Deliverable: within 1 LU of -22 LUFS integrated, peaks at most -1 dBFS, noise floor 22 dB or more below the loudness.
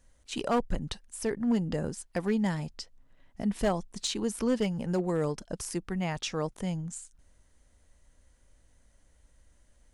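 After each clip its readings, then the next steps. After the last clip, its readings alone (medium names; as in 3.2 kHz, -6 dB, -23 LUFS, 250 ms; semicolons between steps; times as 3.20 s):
clipped samples 0.4%; clipping level -20.0 dBFS; loudness -32.0 LUFS; peak level -20.0 dBFS; loudness target -22.0 LUFS
-> clip repair -20 dBFS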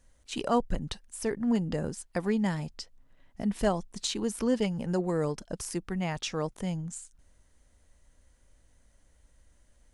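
clipped samples 0.0%; loudness -31.5 LUFS; peak level -14.0 dBFS; loudness target -22.0 LUFS
-> trim +9.5 dB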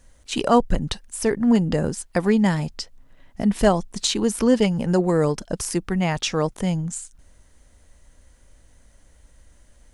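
loudness -22.0 LUFS; peak level -4.5 dBFS; noise floor -55 dBFS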